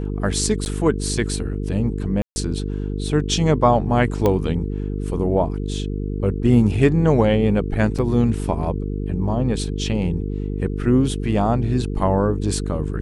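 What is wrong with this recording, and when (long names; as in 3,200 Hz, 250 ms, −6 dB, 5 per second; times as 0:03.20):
mains buzz 50 Hz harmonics 9 −25 dBFS
0:00.65–0:00.66: drop-out 9.9 ms
0:02.22–0:02.36: drop-out 140 ms
0:04.26: click −7 dBFS
0:07.98–0:07.99: drop-out 6.5 ms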